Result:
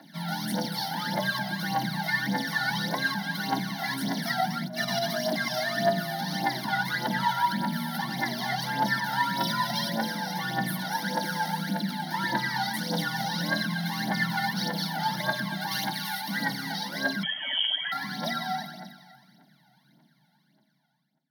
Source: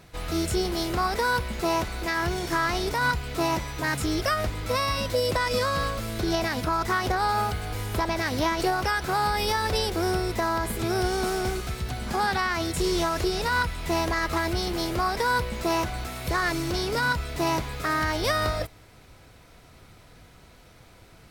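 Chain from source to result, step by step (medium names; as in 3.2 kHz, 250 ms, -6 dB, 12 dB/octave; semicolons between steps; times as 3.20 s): fade out at the end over 6.18 s; hard clipper -25.5 dBFS, distortion -10 dB; 15.71–16.21 s: tilt shelf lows -7.5 dB; echo whose repeats swap between lows and highs 122 ms, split 830 Hz, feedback 60%, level -3.5 dB; reverberation RT60 0.35 s, pre-delay 3 ms, DRR 8 dB; phaser 1.7 Hz, delay 1.7 ms, feedback 73%; 4.63–5.18 s: compressor with a negative ratio -23 dBFS, ratio -0.5; 17.23–17.92 s: frequency inversion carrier 3.1 kHz; bass shelf 450 Hz -7.5 dB; static phaser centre 1.6 kHz, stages 8; frequency shift +130 Hz; hum notches 60/120/180/240 Hz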